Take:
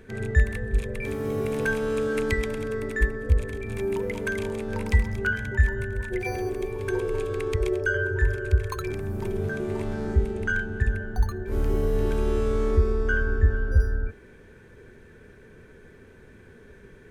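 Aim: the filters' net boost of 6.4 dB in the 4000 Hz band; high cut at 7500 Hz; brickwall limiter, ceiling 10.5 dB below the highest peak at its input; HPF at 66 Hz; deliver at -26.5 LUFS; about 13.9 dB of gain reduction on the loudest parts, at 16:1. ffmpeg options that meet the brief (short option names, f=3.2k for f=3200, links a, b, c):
-af "highpass=66,lowpass=7.5k,equalizer=f=4k:t=o:g=8.5,acompressor=threshold=-30dB:ratio=16,volume=10dB,alimiter=limit=-17.5dB:level=0:latency=1"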